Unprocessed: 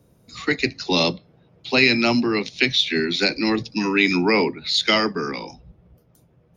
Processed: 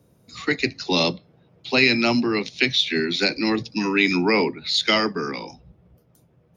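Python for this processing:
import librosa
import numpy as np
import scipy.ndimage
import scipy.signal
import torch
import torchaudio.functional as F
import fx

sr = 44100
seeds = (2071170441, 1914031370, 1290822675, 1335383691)

y = scipy.signal.sosfilt(scipy.signal.butter(2, 60.0, 'highpass', fs=sr, output='sos'), x)
y = y * 10.0 ** (-1.0 / 20.0)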